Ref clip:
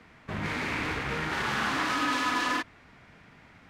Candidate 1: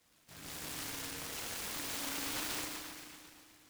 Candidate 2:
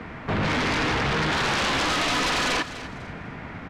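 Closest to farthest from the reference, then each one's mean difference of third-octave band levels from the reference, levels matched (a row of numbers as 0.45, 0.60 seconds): 2, 1; 5.5, 11.0 decibels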